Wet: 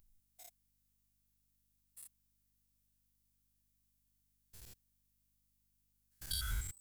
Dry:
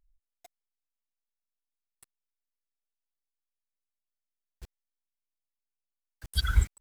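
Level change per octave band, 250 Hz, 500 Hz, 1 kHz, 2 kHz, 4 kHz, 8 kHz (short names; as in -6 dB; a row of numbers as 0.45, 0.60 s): -12.0, -11.5, -13.0, -11.0, -7.5, 0.0 dB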